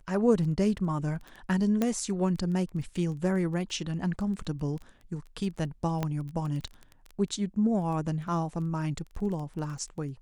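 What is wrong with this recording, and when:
crackle 13 per s -35 dBFS
1.82 s: pop -14 dBFS
6.03 s: pop -16 dBFS

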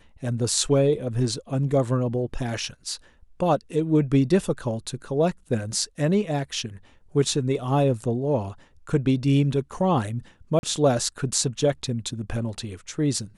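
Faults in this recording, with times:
10.59–10.63 s: dropout 41 ms

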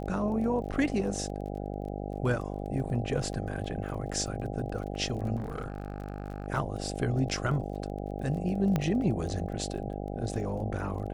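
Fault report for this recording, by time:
buzz 50 Hz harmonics 16 -36 dBFS
crackle 24 per s -39 dBFS
0.72–0.73 s: dropout 6 ms
5.36–6.48 s: clipped -30.5 dBFS
8.76 s: pop -15 dBFS

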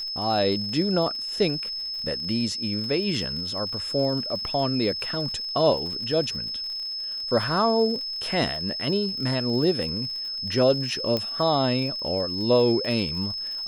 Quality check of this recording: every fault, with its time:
crackle 66 per s -34 dBFS
whine 5.2 kHz -29 dBFS
11.17 s: pop -13 dBFS

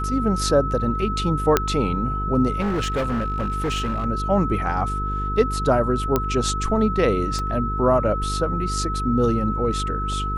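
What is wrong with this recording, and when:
buzz 50 Hz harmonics 9 -27 dBFS
whine 1.3 kHz -26 dBFS
1.57 s: pop -2 dBFS
2.60–4.06 s: clipped -19.5 dBFS
6.16 s: pop -6 dBFS
7.39 s: pop -17 dBFS

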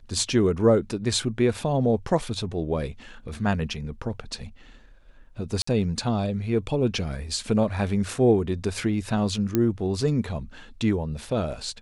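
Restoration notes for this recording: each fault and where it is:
5.62–5.67 s: dropout 54 ms
9.55 s: pop -9 dBFS

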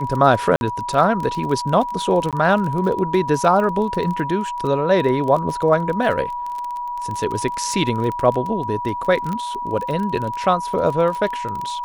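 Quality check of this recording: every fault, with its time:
crackle 24 per s -24 dBFS
whine 970 Hz -24 dBFS
0.56–0.61 s: dropout 51 ms
2.31–2.33 s: dropout 17 ms
9.33 s: pop -15 dBFS

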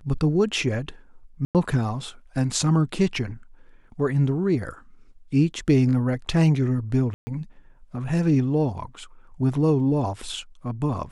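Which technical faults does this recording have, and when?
1.45–1.55 s: dropout 98 ms
7.14–7.27 s: dropout 130 ms

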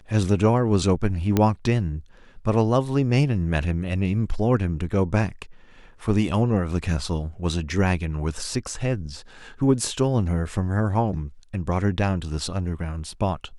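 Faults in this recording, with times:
1.37 s: pop -7 dBFS

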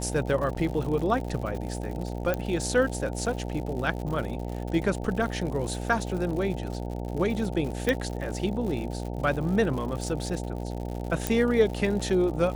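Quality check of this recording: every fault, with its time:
buzz 60 Hz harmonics 15 -33 dBFS
crackle 120 per s -34 dBFS
0.55–0.56 s: dropout 6.5 ms
2.34 s: pop -14 dBFS
7.89 s: pop -11 dBFS
11.27 s: pop

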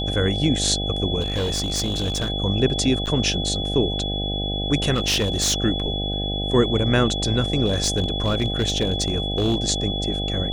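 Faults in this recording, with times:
buzz 50 Hz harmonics 16 -27 dBFS
whine 3.4 kHz -27 dBFS
1.20–2.30 s: clipped -19.5 dBFS
3.06–3.07 s: dropout 8 ms
4.94–5.54 s: clipped -16.5 dBFS
7.65–9.55 s: clipped -15 dBFS

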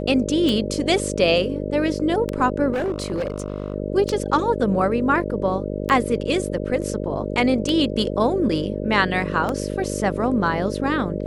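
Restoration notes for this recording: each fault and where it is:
buzz 50 Hz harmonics 12 -27 dBFS
tick 33 1/3 rpm -11 dBFS
2.72–3.74 s: clipped -20 dBFS

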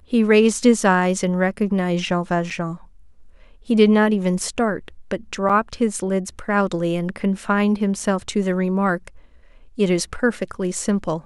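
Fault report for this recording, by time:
2.50–2.51 s: dropout 5.8 ms
5.49–5.50 s: dropout 5.8 ms

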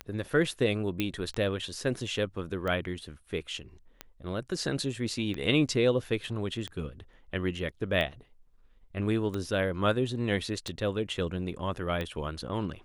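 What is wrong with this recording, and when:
tick 45 rpm -21 dBFS
1.00 s: pop -15 dBFS

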